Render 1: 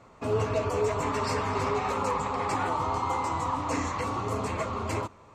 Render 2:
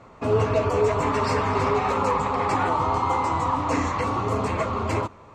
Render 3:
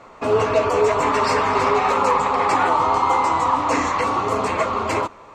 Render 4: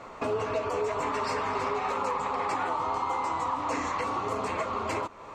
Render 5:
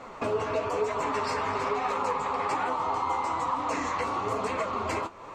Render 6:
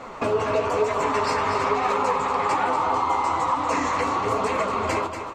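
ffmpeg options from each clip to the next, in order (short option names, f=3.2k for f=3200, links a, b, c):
-af "lowpass=f=3.9k:p=1,volume=6dB"
-af "equalizer=f=94:t=o:w=2.7:g=-13,volume=6.5dB"
-af "acompressor=threshold=-31dB:ratio=3"
-af "flanger=delay=3.8:depth=9:regen=58:speed=1.1:shape=sinusoidal,volume=5dB"
-af "aecho=1:1:238:0.376,volume=5.5dB"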